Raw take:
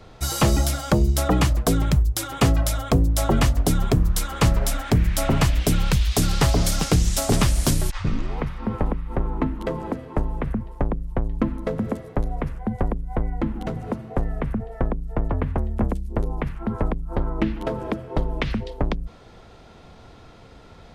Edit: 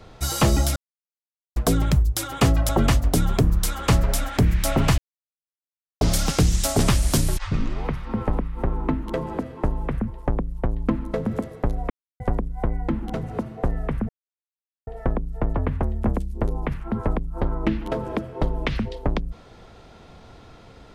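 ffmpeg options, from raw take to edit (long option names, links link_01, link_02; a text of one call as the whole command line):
ffmpeg -i in.wav -filter_complex "[0:a]asplit=9[link_01][link_02][link_03][link_04][link_05][link_06][link_07][link_08][link_09];[link_01]atrim=end=0.76,asetpts=PTS-STARTPTS,afade=type=out:start_time=0.756:duration=0.004:curve=hsin[link_10];[link_02]atrim=start=0.76:end=1.56,asetpts=PTS-STARTPTS,volume=0[link_11];[link_03]atrim=start=1.56:end=2.692,asetpts=PTS-STARTPTS,afade=type=in:duration=0.004:curve=hsin[link_12];[link_04]atrim=start=3.218:end=5.51,asetpts=PTS-STARTPTS,afade=type=out:start_time=2.288:duration=0.004:curve=hsin[link_13];[link_05]atrim=start=5.51:end=6.54,asetpts=PTS-STARTPTS,volume=0[link_14];[link_06]atrim=start=6.54:end=12.43,asetpts=PTS-STARTPTS,afade=type=in:duration=0.004:curve=hsin,afade=type=out:start_time=5.886:duration=0.004:curve=hsin[link_15];[link_07]atrim=start=12.43:end=12.73,asetpts=PTS-STARTPTS,volume=0[link_16];[link_08]atrim=start=12.73:end=14.62,asetpts=PTS-STARTPTS,afade=type=in:duration=0.004:curve=hsin,afade=type=out:start_time=1.886:duration=0.004:curve=hsin,apad=pad_dur=0.78[link_17];[link_09]atrim=start=14.62,asetpts=PTS-STARTPTS,afade=type=in:duration=0.004:curve=hsin[link_18];[link_10][link_11][link_12]concat=n=3:v=0:a=1[link_19];[link_13][link_14][link_15][link_16][link_17][link_18]concat=n=6:v=0:a=1[link_20];[link_19][link_20]acrossfade=duration=0.004:curve1=hsin:curve2=hsin" out.wav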